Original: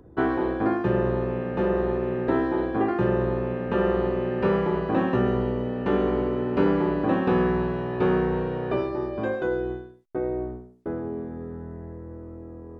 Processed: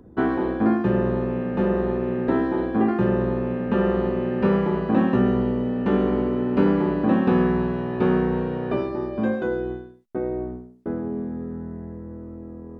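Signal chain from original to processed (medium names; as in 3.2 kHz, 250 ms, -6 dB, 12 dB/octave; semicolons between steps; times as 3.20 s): peaking EQ 220 Hz +13 dB 0.33 oct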